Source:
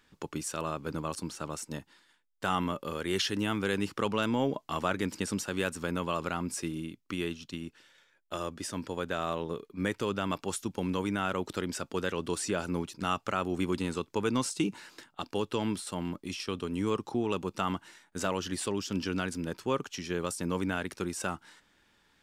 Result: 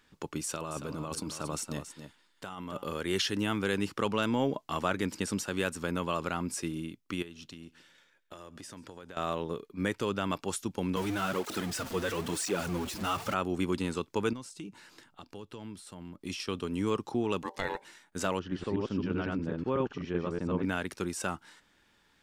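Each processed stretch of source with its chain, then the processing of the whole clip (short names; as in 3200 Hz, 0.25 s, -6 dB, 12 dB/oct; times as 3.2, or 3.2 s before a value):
0.43–2.85 bell 1700 Hz -4 dB 0.29 oct + negative-ratio compressor -37 dBFS + echo 0.278 s -10.5 dB
7.22–9.17 compressor 10:1, threshold -42 dBFS + feedback echo 0.137 s, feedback 40%, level -21.5 dB
10.96–13.34 zero-crossing step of -32 dBFS + tape flanging out of phase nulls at 1 Hz, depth 7.6 ms
14.33–16.21 compressor 2:1, threshold -54 dBFS + low shelf 180 Hz +7 dB
17.43–17.85 notches 50/100/150/200/250/300 Hz + ring modulator 680 Hz
18.39–20.65 reverse delay 0.125 s, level 0 dB + tape spacing loss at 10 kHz 36 dB
whole clip: dry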